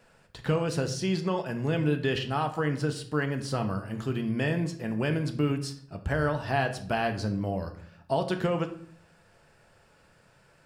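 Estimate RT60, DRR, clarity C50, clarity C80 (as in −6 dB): 0.55 s, 5.5 dB, 11.5 dB, 15.0 dB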